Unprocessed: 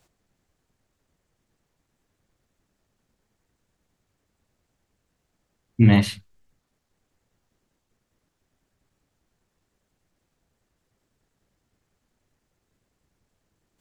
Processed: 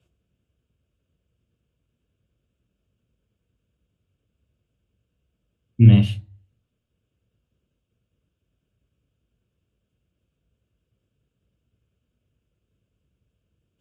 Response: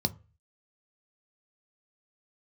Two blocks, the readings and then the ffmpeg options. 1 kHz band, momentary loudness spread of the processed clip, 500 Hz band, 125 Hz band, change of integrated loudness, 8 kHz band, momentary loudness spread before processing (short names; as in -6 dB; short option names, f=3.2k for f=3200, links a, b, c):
under -10 dB, 16 LU, -3.5 dB, +6.0 dB, +3.5 dB, under -10 dB, 8 LU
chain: -filter_complex "[1:a]atrim=start_sample=2205,asetrate=27783,aresample=44100[a];[0:a][a]afir=irnorm=-1:irlink=0,volume=-16.5dB"